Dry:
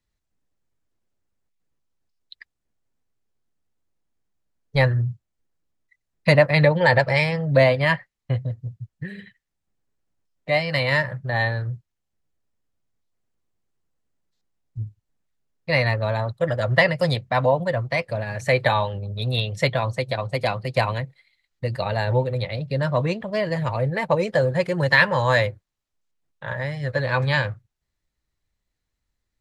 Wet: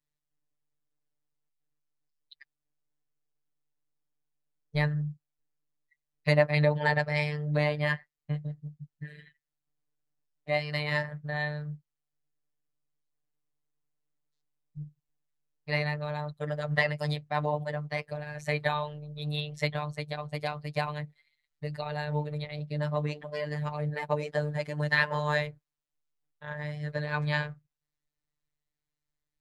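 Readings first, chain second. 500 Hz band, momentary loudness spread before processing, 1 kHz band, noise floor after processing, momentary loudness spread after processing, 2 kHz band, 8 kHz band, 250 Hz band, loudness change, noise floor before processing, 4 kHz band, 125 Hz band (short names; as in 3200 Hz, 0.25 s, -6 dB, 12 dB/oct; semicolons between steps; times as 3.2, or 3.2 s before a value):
-10.5 dB, 15 LU, -9.0 dB, under -85 dBFS, 15 LU, -9.0 dB, n/a, -7.0 dB, -9.0 dB, -80 dBFS, -9.5 dB, -8.5 dB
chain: robotiser 149 Hz; gain -7 dB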